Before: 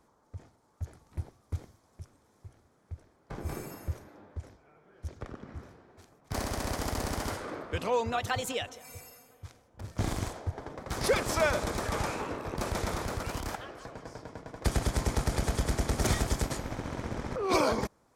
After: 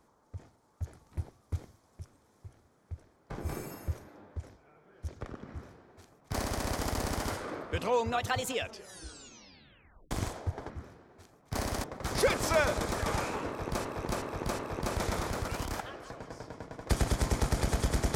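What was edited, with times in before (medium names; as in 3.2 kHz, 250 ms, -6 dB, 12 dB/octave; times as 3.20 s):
5.49–6.63 s: copy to 10.70 s
8.51 s: tape stop 1.60 s
12.34–12.71 s: loop, 4 plays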